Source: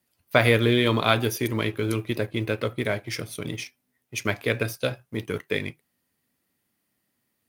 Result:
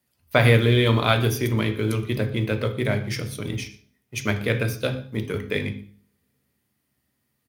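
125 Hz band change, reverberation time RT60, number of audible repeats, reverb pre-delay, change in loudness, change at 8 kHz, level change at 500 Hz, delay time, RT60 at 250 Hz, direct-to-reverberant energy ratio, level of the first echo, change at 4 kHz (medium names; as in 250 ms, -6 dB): +6.5 dB, 0.45 s, 1, 3 ms, +2.0 dB, +0.5 dB, +1.0 dB, 119 ms, 0.55 s, 8.0 dB, -21.5 dB, +0.5 dB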